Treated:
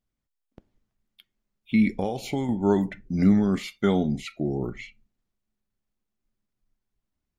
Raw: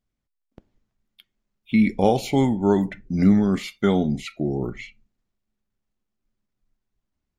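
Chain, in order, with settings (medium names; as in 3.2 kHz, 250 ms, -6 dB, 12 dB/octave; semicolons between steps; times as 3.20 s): 1.95–2.49 s: compression 5:1, threshold -22 dBFS, peak gain reduction 9.5 dB; trim -2.5 dB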